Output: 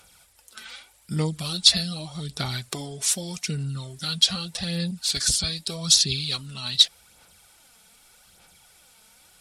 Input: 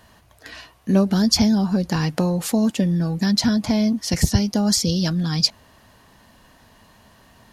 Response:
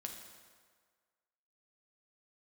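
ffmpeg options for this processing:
-af "crystalizer=i=8.5:c=0,asetrate=35280,aresample=44100,aphaser=in_gain=1:out_gain=1:delay=4.6:decay=0.47:speed=0.83:type=sinusoidal,volume=0.178"

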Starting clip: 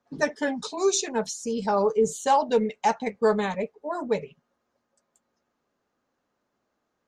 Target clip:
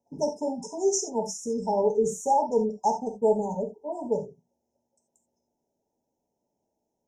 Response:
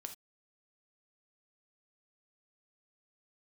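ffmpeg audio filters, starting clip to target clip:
-filter_complex "[1:a]atrim=start_sample=2205[s0];[0:a][s0]afir=irnorm=-1:irlink=0,afftfilt=real='re*(1-between(b*sr/4096,980,5100))':imag='im*(1-between(b*sr/4096,980,5100))':win_size=4096:overlap=0.75,volume=1.33"

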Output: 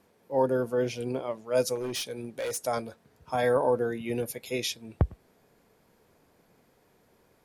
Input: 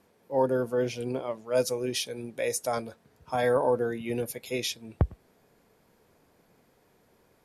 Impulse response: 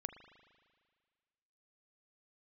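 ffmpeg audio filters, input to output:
-filter_complex "[0:a]asettb=1/sr,asplit=3[s0][s1][s2];[s0]atrim=end=1.754[s3];[s1]atrim=start=1.75:end=2.6,asetpts=PTS-STARTPTS,afade=t=in:d=0.004:c=qsin,afade=t=out:st=0.846:d=0.004:c=qsin,volume=28.2,asoftclip=hard,volume=0.0355[s4];[s2]atrim=start=2.596[s5];[s3][s4]acrossfade=d=0.004:c1=hsin:c2=qsin[s6];[s6][s5]acrossfade=d=0.004:c1=qsin:c2=hsin"

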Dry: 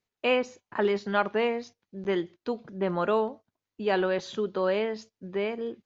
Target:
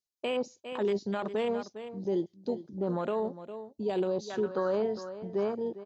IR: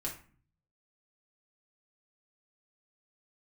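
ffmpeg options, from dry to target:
-af "afwtdn=0.0251,highshelf=f=3400:t=q:w=1.5:g=12,aecho=1:1:404:0.178,alimiter=limit=0.0841:level=0:latency=1:release=16,asetnsamples=n=441:p=0,asendcmd='3.2 equalizer g -11.5;4.3 equalizer g 5',equalizer=f=1500:w=1.4:g=-4"

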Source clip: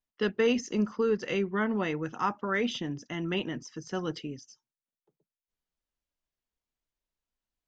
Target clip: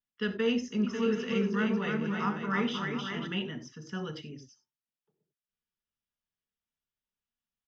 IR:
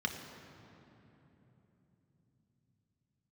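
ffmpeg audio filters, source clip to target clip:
-filter_complex "[0:a]asplit=3[s0][s1][s2];[s0]afade=t=out:st=0.83:d=0.02[s3];[s1]aecho=1:1:310|542.5|716.9|847.7|945.7:0.631|0.398|0.251|0.158|0.1,afade=t=in:st=0.83:d=0.02,afade=t=out:st=3.26:d=0.02[s4];[s2]afade=t=in:st=3.26:d=0.02[s5];[s3][s4][s5]amix=inputs=3:normalize=0[s6];[1:a]atrim=start_sample=2205,afade=t=out:st=0.15:d=0.01,atrim=end_sample=7056[s7];[s6][s7]afir=irnorm=-1:irlink=0,volume=0.422"

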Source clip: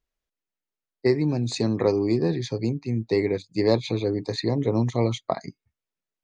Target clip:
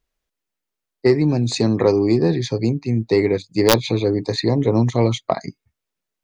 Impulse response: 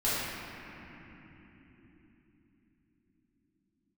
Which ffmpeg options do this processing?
-af "aeval=exprs='(mod(2.66*val(0)+1,2)-1)/2.66':c=same,acontrast=64"

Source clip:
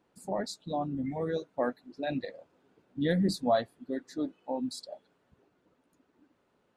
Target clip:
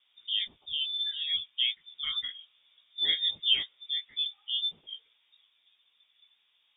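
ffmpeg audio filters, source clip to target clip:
-filter_complex "[0:a]acrossover=split=200[s0][s1];[s0]acompressor=threshold=0.002:ratio=6[s2];[s2][s1]amix=inputs=2:normalize=0,flanger=delay=15.5:depth=3.8:speed=1.4,lowpass=f=3200:t=q:w=0.5098,lowpass=f=3200:t=q:w=0.6013,lowpass=f=3200:t=q:w=0.9,lowpass=f=3200:t=q:w=2.563,afreqshift=-3800,volume=1.68"

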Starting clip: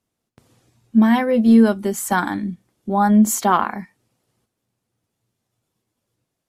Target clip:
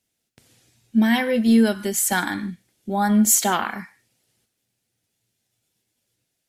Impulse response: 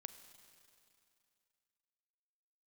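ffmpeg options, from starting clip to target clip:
-filter_complex "[0:a]asplit=2[s0][s1];[s1]highpass=f=1200:w=0.5412,highpass=f=1200:w=1.3066[s2];[1:a]atrim=start_sample=2205,afade=t=out:st=0.21:d=0.01,atrim=end_sample=9702[s3];[s2][s3]afir=irnorm=-1:irlink=0,volume=4.22[s4];[s0][s4]amix=inputs=2:normalize=0,volume=0.631"

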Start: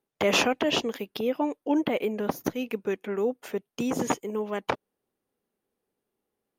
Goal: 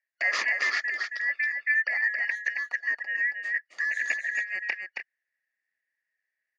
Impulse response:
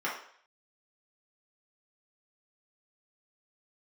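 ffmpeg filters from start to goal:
-filter_complex "[0:a]afftfilt=real='real(if(lt(b,272),68*(eq(floor(b/68),0)*1+eq(floor(b/68),1)*0+eq(floor(b/68),2)*3+eq(floor(b/68),3)*2)+mod(b,68),b),0)':imag='imag(if(lt(b,272),68*(eq(floor(b/68),0)*1+eq(floor(b/68),1)*0+eq(floor(b/68),2)*3+eq(floor(b/68),3)*2)+mod(b,68),b),0)':win_size=2048:overlap=0.75,highpass=460,equalizer=f=620:t=q:w=4:g=6,equalizer=f=1000:t=q:w=4:g=-6,equalizer=f=1800:t=q:w=4:g=8,lowpass=f=7200:w=0.5412,lowpass=f=7200:w=1.3066,asplit=2[s0][s1];[s1]aecho=0:1:273:0.562[s2];[s0][s2]amix=inputs=2:normalize=0,volume=0.422"

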